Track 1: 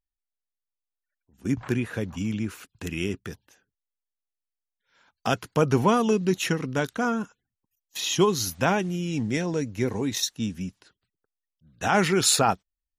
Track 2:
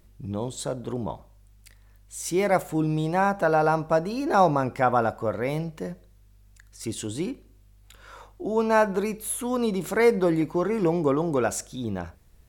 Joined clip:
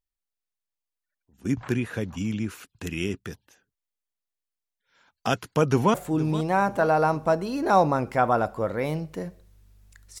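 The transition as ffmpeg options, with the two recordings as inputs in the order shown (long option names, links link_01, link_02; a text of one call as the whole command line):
ffmpeg -i cue0.wav -i cue1.wav -filter_complex "[0:a]apad=whole_dur=10.2,atrim=end=10.2,atrim=end=5.942[link_01];[1:a]atrim=start=2.578:end=6.84[link_02];[link_01][link_02]acrossfade=duration=0.004:curve1=hsin:curve2=hsin,asplit=2[link_03][link_04];[link_04]afade=type=in:start_time=5.64:duration=0.01,afade=type=out:start_time=5.94:duration=0.01,aecho=0:1:470|940|1410|1880|2350:0.188365|0.0941825|0.0470912|0.0235456|0.0117728[link_05];[link_03][link_05]amix=inputs=2:normalize=0" out.wav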